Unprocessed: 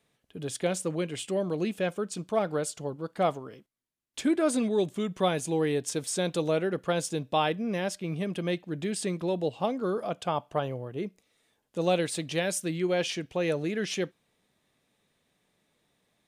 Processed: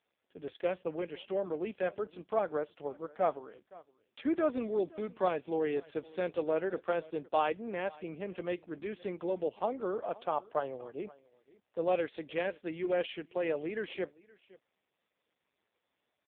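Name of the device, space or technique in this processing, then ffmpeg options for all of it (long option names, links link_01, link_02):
satellite phone: -af "highpass=340,lowpass=3100,aecho=1:1:518:0.0794,volume=-2dB" -ar 8000 -c:a libopencore_amrnb -b:a 5150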